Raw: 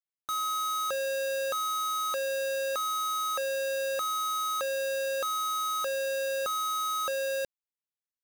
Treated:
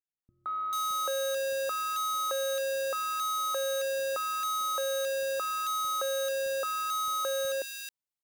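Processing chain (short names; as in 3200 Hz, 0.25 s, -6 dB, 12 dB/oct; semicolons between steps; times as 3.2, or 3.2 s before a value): three bands offset in time lows, mids, highs 0.17/0.44 s, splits 240/1900 Hz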